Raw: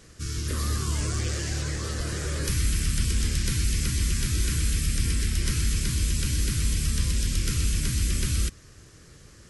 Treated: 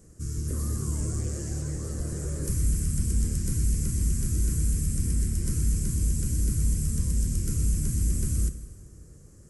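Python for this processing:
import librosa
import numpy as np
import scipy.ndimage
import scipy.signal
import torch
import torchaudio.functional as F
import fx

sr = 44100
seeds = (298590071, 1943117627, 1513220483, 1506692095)

y = fx.curve_eq(x, sr, hz=(230.0, 530.0, 3700.0, 7400.0), db=(0, -4, -23, -2))
y = fx.rev_plate(y, sr, seeds[0], rt60_s=1.7, hf_ratio=0.85, predelay_ms=0, drr_db=11.0)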